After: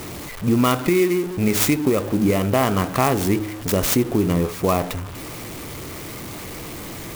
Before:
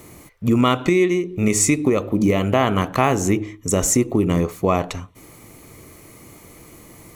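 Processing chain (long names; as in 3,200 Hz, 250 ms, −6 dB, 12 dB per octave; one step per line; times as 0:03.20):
converter with a step at zero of −26.5 dBFS
converter with an unsteady clock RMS 0.039 ms
level −2 dB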